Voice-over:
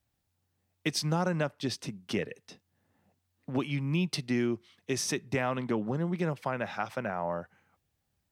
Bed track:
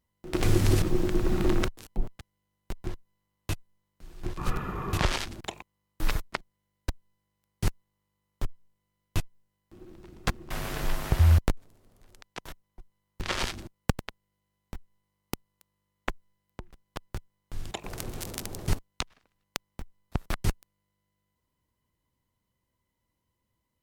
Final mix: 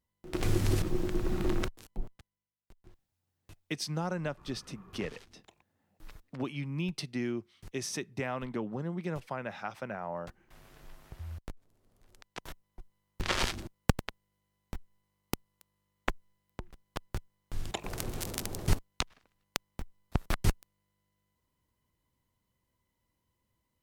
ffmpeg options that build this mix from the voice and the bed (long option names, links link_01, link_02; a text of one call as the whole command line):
ffmpeg -i stem1.wav -i stem2.wav -filter_complex "[0:a]adelay=2850,volume=-5dB[link_01];[1:a]volume=17.5dB,afade=type=out:start_time=1.81:duration=0.75:silence=0.133352,afade=type=in:start_time=11.39:duration=1.41:silence=0.0707946[link_02];[link_01][link_02]amix=inputs=2:normalize=0" out.wav